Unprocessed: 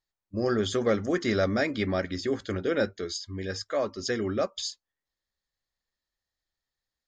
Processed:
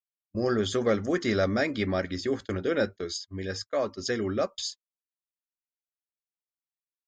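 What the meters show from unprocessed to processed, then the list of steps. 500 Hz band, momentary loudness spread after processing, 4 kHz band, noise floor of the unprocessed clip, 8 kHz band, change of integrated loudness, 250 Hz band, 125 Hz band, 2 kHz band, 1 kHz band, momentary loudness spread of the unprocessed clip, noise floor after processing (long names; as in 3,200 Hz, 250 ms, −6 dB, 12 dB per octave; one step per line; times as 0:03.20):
0.0 dB, 9 LU, 0.0 dB, below −85 dBFS, 0.0 dB, 0.0 dB, 0.0 dB, 0.0 dB, 0.0 dB, 0.0 dB, 9 LU, below −85 dBFS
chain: noise gate −37 dBFS, range −32 dB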